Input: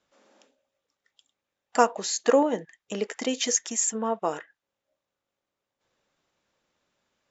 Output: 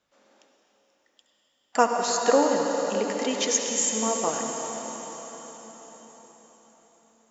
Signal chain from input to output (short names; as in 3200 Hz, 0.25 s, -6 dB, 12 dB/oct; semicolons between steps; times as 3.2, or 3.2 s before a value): bell 360 Hz -2 dB; on a send: reverb RT60 5.1 s, pre-delay 63 ms, DRR 1 dB